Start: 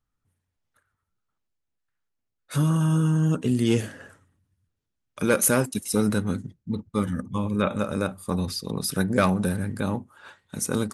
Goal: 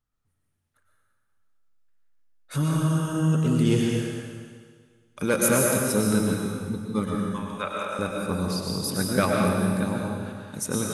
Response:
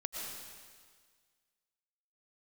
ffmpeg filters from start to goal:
-filter_complex "[0:a]asettb=1/sr,asplit=3[a][b][c];[a]atrim=end=7.154[d];[b]atrim=start=7.15:end=7.99,asetpts=PTS-STARTPTS,afade=t=in:d=0.004:c=qsin,afade=t=out:st=0.836:d=0.004:c=qsin,highpass=700[e];[c]atrim=start=7.986[f];[d][e]acrossfade=d=0.004:c1=hsin:c2=qsin[g];[g][f]acrossfade=d=0.004:c1=qsin:c2=hsin[h];[1:a]atrim=start_sample=2205[i];[h][i]afir=irnorm=-1:irlink=0"

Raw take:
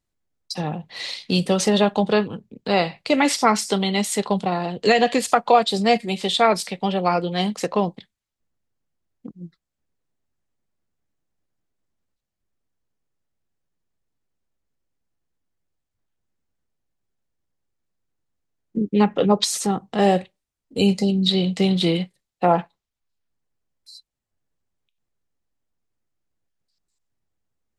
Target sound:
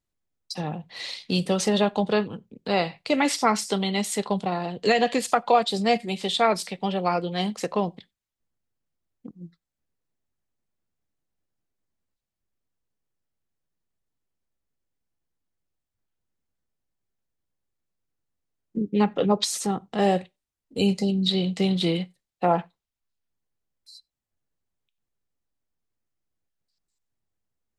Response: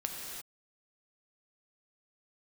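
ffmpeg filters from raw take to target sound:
-filter_complex "[0:a]asplit=2[a][b];[1:a]atrim=start_sample=2205,atrim=end_sample=4410[c];[b][c]afir=irnorm=-1:irlink=0,volume=-23dB[d];[a][d]amix=inputs=2:normalize=0,volume=-4.5dB"

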